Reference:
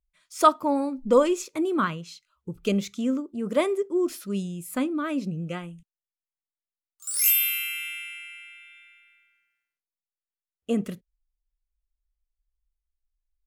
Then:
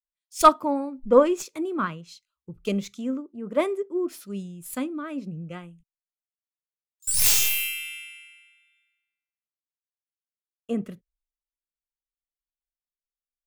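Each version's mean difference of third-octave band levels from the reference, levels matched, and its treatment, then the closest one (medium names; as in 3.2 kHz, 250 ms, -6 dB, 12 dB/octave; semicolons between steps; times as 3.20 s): 4.5 dB: tracing distortion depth 0.086 ms; in parallel at +2 dB: compression, threshold -32 dBFS, peak gain reduction 19.5 dB; on the sum: three bands expanded up and down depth 100%; trim -7 dB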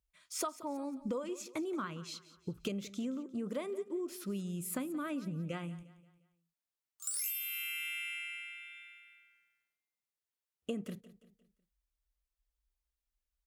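6.5 dB: high-pass 44 Hz; compression 12:1, threshold -35 dBFS, peak gain reduction 24 dB; on a send: feedback delay 176 ms, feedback 43%, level -17 dB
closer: first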